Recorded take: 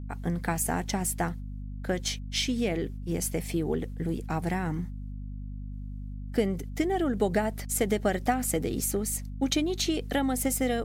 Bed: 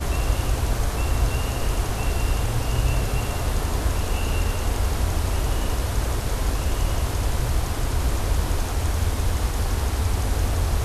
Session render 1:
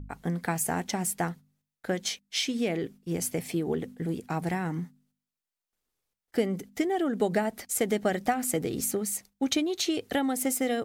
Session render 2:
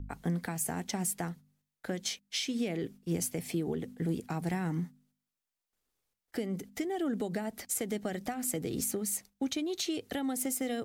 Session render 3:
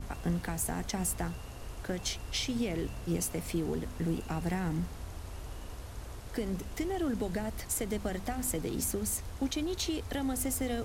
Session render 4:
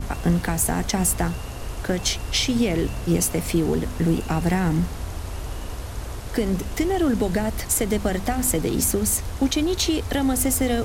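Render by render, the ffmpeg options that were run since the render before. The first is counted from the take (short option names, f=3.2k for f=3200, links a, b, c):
-af "bandreject=f=50:t=h:w=4,bandreject=f=100:t=h:w=4,bandreject=f=150:t=h:w=4,bandreject=f=200:t=h:w=4,bandreject=f=250:t=h:w=4"
-filter_complex "[0:a]alimiter=limit=-22dB:level=0:latency=1:release=296,acrossover=split=330|3000[a][b][c];[b]acompressor=threshold=-44dB:ratio=1.5[d];[a][d][c]amix=inputs=3:normalize=0"
-filter_complex "[1:a]volume=-19.5dB[a];[0:a][a]amix=inputs=2:normalize=0"
-af "volume=11.5dB"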